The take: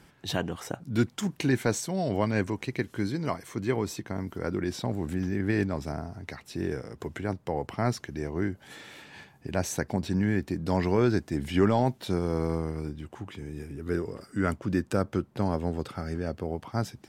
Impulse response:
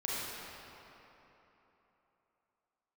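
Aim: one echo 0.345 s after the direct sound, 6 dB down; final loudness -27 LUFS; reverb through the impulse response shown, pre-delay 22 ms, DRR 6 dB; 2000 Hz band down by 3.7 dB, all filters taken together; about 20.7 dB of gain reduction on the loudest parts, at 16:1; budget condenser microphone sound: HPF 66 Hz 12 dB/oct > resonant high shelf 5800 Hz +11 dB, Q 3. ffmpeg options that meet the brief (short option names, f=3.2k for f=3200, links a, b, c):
-filter_complex "[0:a]equalizer=f=2k:t=o:g=-3.5,acompressor=threshold=-39dB:ratio=16,aecho=1:1:345:0.501,asplit=2[a][b];[1:a]atrim=start_sample=2205,adelay=22[c];[b][c]afir=irnorm=-1:irlink=0,volume=-11.5dB[d];[a][d]amix=inputs=2:normalize=0,highpass=66,highshelf=f=5.8k:t=q:w=3:g=11,volume=14dB"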